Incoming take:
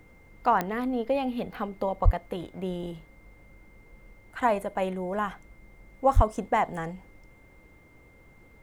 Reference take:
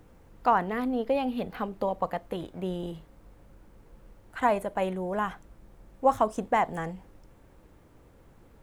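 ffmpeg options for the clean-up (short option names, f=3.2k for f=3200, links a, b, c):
-filter_complex "[0:a]adeclick=t=4,bandreject=f=2.1k:w=30,asplit=3[a][b][c];[a]afade=t=out:st=2.04:d=0.02[d];[b]highpass=f=140:w=0.5412,highpass=f=140:w=1.3066,afade=t=in:st=2.04:d=0.02,afade=t=out:st=2.16:d=0.02[e];[c]afade=t=in:st=2.16:d=0.02[f];[d][e][f]amix=inputs=3:normalize=0,asplit=3[g][h][i];[g]afade=t=out:st=6.15:d=0.02[j];[h]highpass=f=140:w=0.5412,highpass=f=140:w=1.3066,afade=t=in:st=6.15:d=0.02,afade=t=out:st=6.27:d=0.02[k];[i]afade=t=in:st=6.27:d=0.02[l];[j][k][l]amix=inputs=3:normalize=0"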